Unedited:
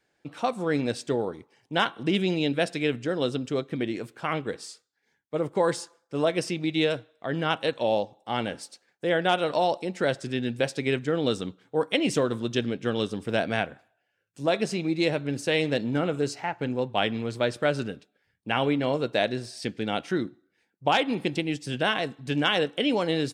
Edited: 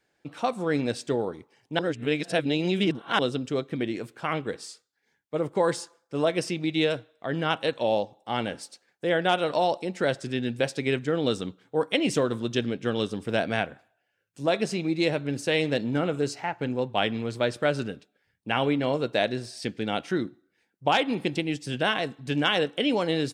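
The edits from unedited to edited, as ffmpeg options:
-filter_complex "[0:a]asplit=3[a][b][c];[a]atrim=end=1.792[d];[b]atrim=start=1.788:end=3.192,asetpts=PTS-STARTPTS,areverse[e];[c]atrim=start=3.188[f];[d][e]acrossfade=d=0.004:c1=hsin:c2=hsin[g];[g][f]acrossfade=d=0.004:c1=hsin:c2=hsin"

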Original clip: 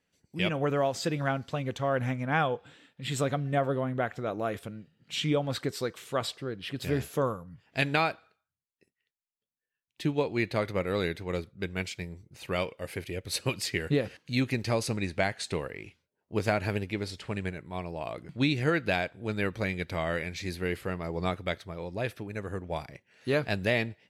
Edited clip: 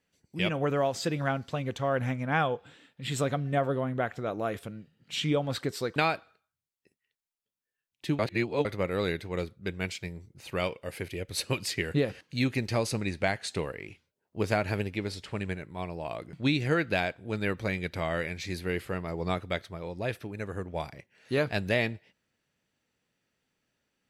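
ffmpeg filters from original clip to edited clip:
-filter_complex "[0:a]asplit=4[a][b][c][d];[a]atrim=end=5.962[e];[b]atrim=start=7.918:end=10.152[f];[c]atrim=start=10.148:end=10.612,asetpts=PTS-STARTPTS,areverse[g];[d]atrim=start=10.608[h];[e][f]acrossfade=d=0.004:c1=hsin:c2=hsin[i];[i][g]acrossfade=d=0.004:c1=hsin:c2=hsin[j];[j][h]acrossfade=d=0.004:c1=hsin:c2=hsin"

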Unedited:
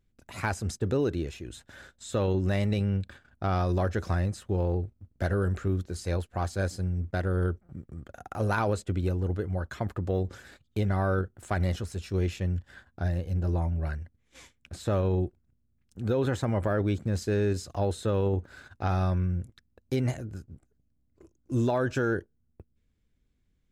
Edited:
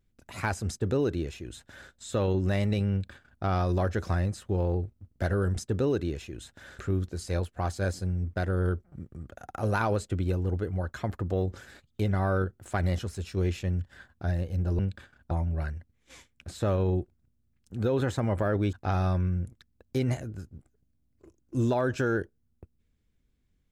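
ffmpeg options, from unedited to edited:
-filter_complex "[0:a]asplit=6[a][b][c][d][e][f];[a]atrim=end=5.562[g];[b]atrim=start=0.678:end=1.912[h];[c]atrim=start=5.558:end=13.562[i];[d]atrim=start=2.908:end=3.432[j];[e]atrim=start=13.558:end=16.982[k];[f]atrim=start=18.698[l];[g][h]acrossfade=d=0.004:c1=hsin:c2=hsin[m];[m][i]acrossfade=d=0.004:c1=hsin:c2=hsin[n];[n][j]acrossfade=d=0.004:c1=hsin:c2=hsin[o];[o][k]acrossfade=d=0.004:c1=hsin:c2=hsin[p];[p][l]acrossfade=d=0.004:c1=hsin:c2=hsin"

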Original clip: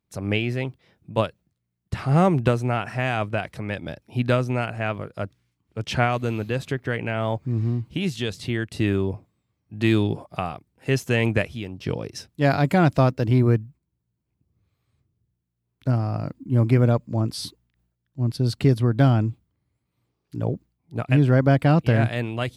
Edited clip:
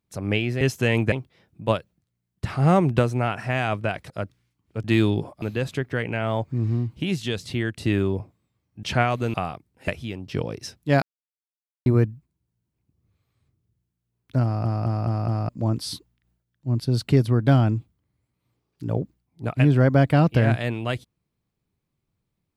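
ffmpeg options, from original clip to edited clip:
-filter_complex "[0:a]asplit=16[a][b][c][d][e][f][g][h][i][j][k][l][m][n][o][p];[a]atrim=end=0.612[q];[b]atrim=start=10.888:end=11.402[r];[c]atrim=start=0.608:end=3.592[s];[d]atrim=start=5.108:end=5.852[t];[e]atrim=start=9.768:end=10.352[u];[f]atrim=start=6.358:end=9.772[v];[g]atrim=start=5.848:end=6.362[w];[h]atrim=start=10.348:end=10.892[x];[i]atrim=start=11.398:end=12.54,asetpts=PTS-STARTPTS,afade=t=out:st=1.138:d=0.004:c=hsin[y];[j]atrim=start=12.54:end=13.38,asetpts=PTS-STARTPTS,volume=0[z];[k]atrim=start=13.38:end=16.172,asetpts=PTS-STARTPTS,afade=t=in:d=0.004:c=hsin[aa];[l]atrim=start=15.958:end=16.172[ab];[m]atrim=start=15.958:end=16.172[ac];[n]atrim=start=15.958:end=16.172[ad];[o]atrim=start=15.958:end=16.172[ae];[p]atrim=start=17.008[af];[q][r]acrossfade=d=0.004:c1=hsin:c2=hsin[ag];[ag][s]acrossfade=d=0.004:c1=hsin:c2=hsin[ah];[ah][t]acrossfade=d=0.004:c1=hsin:c2=hsin[ai];[ai][u]acrossfade=d=0.004:c1=hsin:c2=hsin[aj];[aj][v]acrossfade=d=0.004:c1=hsin:c2=hsin[ak];[ak][w]acrossfade=d=0.004:c1=hsin:c2=hsin[al];[al][x]acrossfade=d=0.004:c1=hsin:c2=hsin[am];[y][z][aa]concat=n=3:v=0:a=1[an];[am][an]acrossfade=d=0.004:c1=hsin:c2=hsin[ao];[ao][ab]acrossfade=d=0.004:c1=hsin:c2=hsin[ap];[ap][ac]acrossfade=d=0.004:c1=hsin:c2=hsin[aq];[aq][ad]acrossfade=d=0.004:c1=hsin:c2=hsin[ar];[ar][ae]acrossfade=d=0.004:c1=hsin:c2=hsin[as];[as][af]acrossfade=d=0.004:c1=hsin:c2=hsin"

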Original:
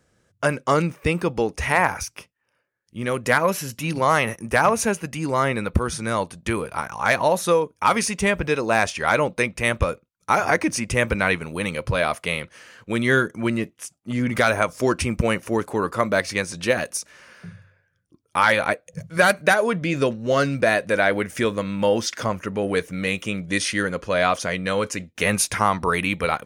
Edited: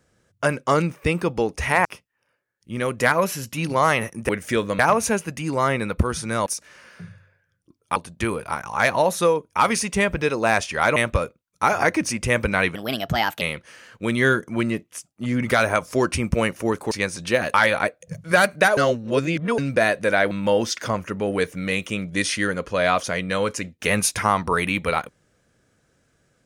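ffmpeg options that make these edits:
-filter_complex "[0:a]asplit=14[a][b][c][d][e][f][g][h][i][j][k][l][m][n];[a]atrim=end=1.852[o];[b]atrim=start=2.108:end=4.552[p];[c]atrim=start=21.168:end=21.672[q];[d]atrim=start=4.548:end=6.222[r];[e]atrim=start=16.898:end=18.402[s];[f]atrim=start=6.218:end=9.222[t];[g]atrim=start=9.628:end=11.424[u];[h]atrim=start=11.42:end=12.28,asetpts=PTS-STARTPTS,asetrate=57330,aresample=44100[v];[i]atrim=start=12.276:end=15.782[w];[j]atrim=start=16.268:end=16.902[x];[k]atrim=start=18.398:end=19.632[y];[l]atrim=start=19.628:end=20.442,asetpts=PTS-STARTPTS,areverse[z];[m]atrim=start=20.438:end=21.172[aa];[n]atrim=start=21.668[ab];[o][p]acrossfade=d=0.004:c1=hsin:c2=hsin[ac];[ac][q]acrossfade=d=0.004:c1=hsin:c2=hsin[ad];[ad][r]acrossfade=d=0.004:c1=hsin:c2=hsin[ae];[ae][s]acrossfade=d=0.004:c1=hsin:c2=hsin[af];[af][t]acrossfade=d=0.004:c1=hsin:c2=hsin[ag];[ag][u]acrossfade=d=0.004:c1=hsin:c2=hsin[ah];[ah][v]acrossfade=d=0.004:c1=hsin:c2=hsin[ai];[ai][w]acrossfade=d=0.004:c1=hsin:c2=hsin[aj];[aj][x]acrossfade=d=0.004:c1=hsin:c2=hsin[ak];[ak][y]acrossfade=d=0.004:c1=hsin:c2=hsin[al];[al][z]acrossfade=d=0.004:c1=hsin:c2=hsin[am];[am][aa]acrossfade=d=0.004:c1=hsin:c2=hsin[an];[an][ab]acrossfade=d=0.004:c1=hsin:c2=hsin"

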